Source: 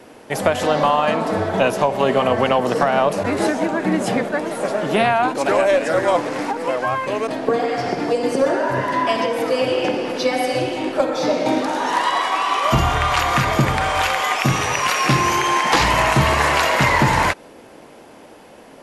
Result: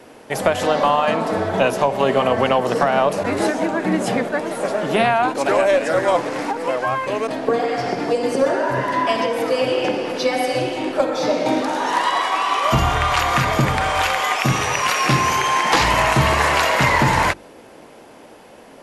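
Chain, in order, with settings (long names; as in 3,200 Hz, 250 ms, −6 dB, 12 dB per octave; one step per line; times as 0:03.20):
mains-hum notches 50/100/150/200/250/300/350 Hz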